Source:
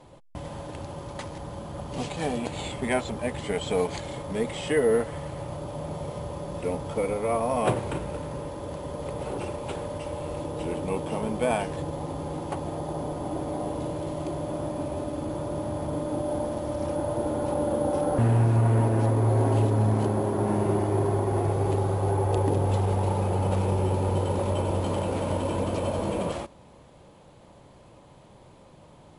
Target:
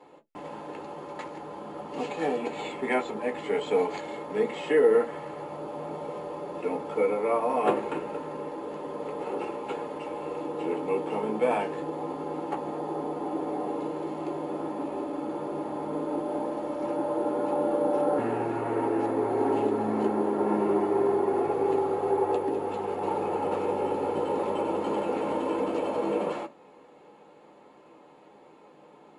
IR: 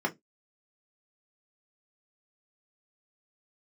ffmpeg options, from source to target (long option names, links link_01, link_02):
-filter_complex "[0:a]lowshelf=frequency=210:gain=-9,asettb=1/sr,asplit=3[link_01][link_02][link_03];[link_01]atrim=end=22.354[link_04];[link_02]atrim=start=22.35:end=23.02,asetpts=PTS-STARTPTS,afade=type=in:duration=0.004:curve=qsin,afade=type=out:start_time=0.666:duration=0.004:curve=qsin,acrossover=split=460|1100[link_05][link_06][link_07];[link_05]acompressor=threshold=-31dB:ratio=4[link_08];[link_06]acompressor=threshold=-37dB:ratio=4[link_09];[link_07]acompressor=threshold=-42dB:ratio=4[link_10];[link_08][link_09][link_10]amix=inputs=3:normalize=0[link_11];[link_03]atrim=start=23.016[link_12];[link_04][link_11]acrossfade=duration=0.004:curve1=hsin:curve2=qsin[link_13];[link_13][link_12]acrossfade=duration=0.004:curve1=qsin:curve2=hsin[link_14];[1:a]atrim=start_sample=2205,asetrate=57330,aresample=44100[link_15];[link_14][link_15]afir=irnorm=-1:irlink=0,volume=-6.5dB"